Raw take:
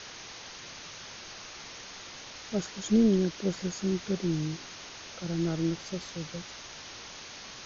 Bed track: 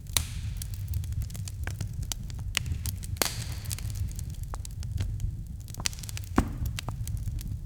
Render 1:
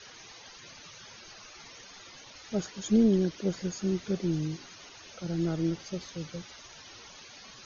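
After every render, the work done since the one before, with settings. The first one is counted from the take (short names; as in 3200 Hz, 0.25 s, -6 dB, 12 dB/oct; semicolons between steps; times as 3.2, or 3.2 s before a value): denoiser 12 dB, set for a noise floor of -45 dBFS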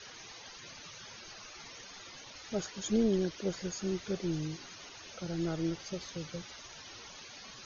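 dynamic EQ 210 Hz, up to -7 dB, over -41 dBFS, Q 0.94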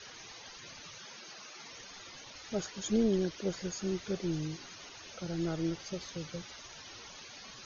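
0.98–1.7 HPF 150 Hz 24 dB/oct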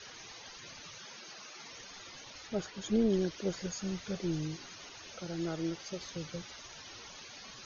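2.47–3.1 air absorption 88 m; 3.66–4.2 bell 360 Hz -13.5 dB 0.23 oct; 5.2–6.01 low shelf 150 Hz -8.5 dB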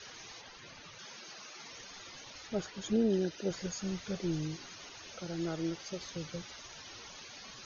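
0.41–0.99 high shelf 5800 Hz -11.5 dB; 2.93–3.51 notch comb 1100 Hz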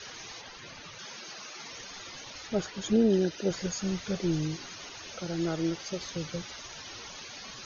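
gain +5.5 dB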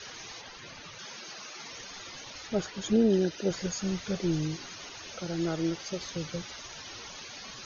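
nothing audible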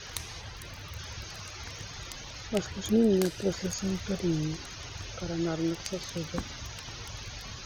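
add bed track -11.5 dB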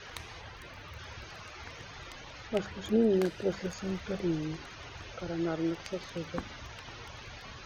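tone controls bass -5 dB, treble -14 dB; notches 50/100/150/200 Hz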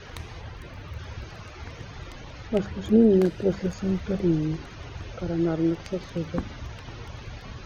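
low shelf 480 Hz +11.5 dB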